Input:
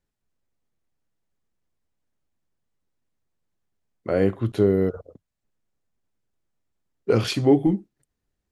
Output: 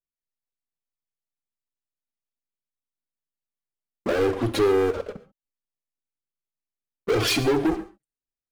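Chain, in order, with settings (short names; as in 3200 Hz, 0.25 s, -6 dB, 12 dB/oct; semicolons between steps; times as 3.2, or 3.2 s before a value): gate -44 dBFS, range -7 dB; bell 96 Hz -6 dB 1.2 oct; compressor 2:1, threshold -30 dBFS, peak gain reduction 10 dB; sample leveller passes 5; envelope flanger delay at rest 7.9 ms, full sweep at -7.5 dBFS; non-linear reverb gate 0.16 s flat, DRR 12 dB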